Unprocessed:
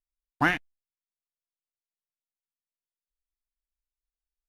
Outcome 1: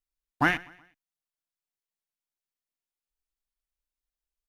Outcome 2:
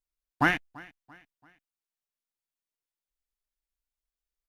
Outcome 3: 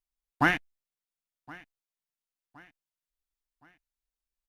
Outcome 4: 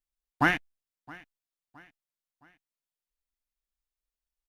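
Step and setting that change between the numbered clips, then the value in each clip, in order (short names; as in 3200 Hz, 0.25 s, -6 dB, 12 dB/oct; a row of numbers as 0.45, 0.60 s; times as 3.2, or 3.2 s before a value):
feedback echo, time: 0.123, 0.338, 1.068, 0.667 s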